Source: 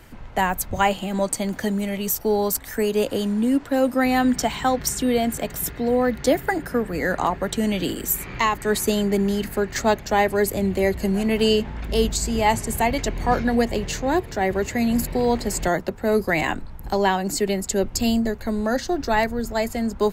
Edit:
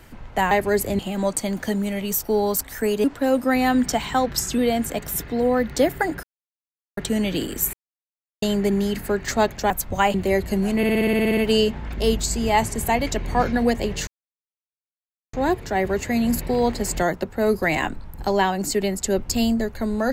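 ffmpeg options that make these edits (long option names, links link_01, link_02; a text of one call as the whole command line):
ffmpeg -i in.wav -filter_complex "[0:a]asplit=23[link_01][link_02][link_03][link_04][link_05][link_06][link_07][link_08][link_09][link_10][link_11][link_12][link_13][link_14][link_15][link_16][link_17][link_18][link_19][link_20][link_21][link_22][link_23];[link_01]atrim=end=0.512[link_24];[link_02]atrim=start=10.178:end=10.662[link_25];[link_03]atrim=start=0.948:end=3.002[link_26];[link_04]atrim=start=3.538:end=4.764[link_27];[link_05]atrim=start=4.76:end=5.06,asetpts=PTS-STARTPTS,asetrate=41013,aresample=44100[link_28];[link_06]atrim=start=5.056:end=6.71,asetpts=PTS-STARTPTS,afade=type=out:start_time=1.65:duration=0.004:curve=hsin[link_29];[link_07]atrim=start=6.71:end=7.45,asetpts=PTS-STARTPTS,volume=0[link_30];[link_08]atrim=start=7.45:end=8.21,asetpts=PTS-STARTPTS,afade=type=in:duration=0.004:curve=hsin,afade=type=out:start_time=0.756:duration=0.004:curve=hsin[link_31];[link_09]atrim=start=8.21:end=8.9,asetpts=PTS-STARTPTS,volume=0[link_32];[link_10]atrim=start=8.9:end=10.182,asetpts=PTS-STARTPTS,afade=type=in:duration=0.004:curve=hsin[link_33];[link_11]atrim=start=0.508:end=0.952[link_34];[link_12]atrim=start=10.658:end=11.352[link_35];[link_13]atrim=start=11.288:end=11.352[link_36];[link_14]atrim=start=11.288:end=11.352[link_37];[link_15]atrim=start=11.288:end=11.352[link_38];[link_16]atrim=start=11.288:end=11.352[link_39];[link_17]atrim=start=11.288:end=11.352[link_40];[link_18]atrim=start=11.288:end=11.352[link_41];[link_19]atrim=start=11.288:end=11.352[link_42];[link_20]atrim=start=11.288:end=11.352[link_43];[link_21]atrim=start=11.288:end=11.352[link_44];[link_22]atrim=start=11.288:end=13.99,asetpts=PTS-STARTPTS,afade=type=out:start_time=2.698:duration=0.004:curve=hsin,apad=pad_dur=1.26[link_45];[link_23]atrim=start=13.99,asetpts=PTS-STARTPTS,afade=type=in:duration=0.004:curve=hsin[link_46];[link_24][link_25]acrossfade=duration=0.004:curve1=hsin:curve2=hsin[link_47];[link_47][link_26]acrossfade=duration=0.004:curve1=hsin:curve2=hsin[link_48];[link_48][link_27]acrossfade=duration=0.004:curve1=hsin:curve2=hsin[link_49];[link_49][link_28]acrossfade=duration=0.004:curve1=hsin:curve2=hsin[link_50];[link_29][link_30][link_31][link_32][link_33]concat=n=5:v=0:a=1[link_51];[link_50][link_51]acrossfade=duration=0.004:curve1=hsin:curve2=hsin[link_52];[link_52][link_34]acrossfade=duration=0.004:curve1=hsin:curve2=hsin[link_53];[link_53][link_35]acrossfade=duration=0.004:curve1=hsin:curve2=hsin[link_54];[link_54][link_36]acrossfade=duration=0.004:curve1=hsin:curve2=hsin[link_55];[link_55][link_37]acrossfade=duration=0.004:curve1=hsin:curve2=hsin[link_56];[link_56][link_38]acrossfade=duration=0.004:curve1=hsin:curve2=hsin[link_57];[link_57][link_39]acrossfade=duration=0.004:curve1=hsin:curve2=hsin[link_58];[link_58][link_40]acrossfade=duration=0.004:curve1=hsin:curve2=hsin[link_59];[link_59][link_41]acrossfade=duration=0.004:curve1=hsin:curve2=hsin[link_60];[link_60][link_42]acrossfade=duration=0.004:curve1=hsin:curve2=hsin[link_61];[link_61][link_43]acrossfade=duration=0.004:curve1=hsin:curve2=hsin[link_62];[link_62][link_44]acrossfade=duration=0.004:curve1=hsin:curve2=hsin[link_63];[link_45][link_46]concat=n=2:v=0:a=1[link_64];[link_63][link_64]acrossfade=duration=0.004:curve1=hsin:curve2=hsin" out.wav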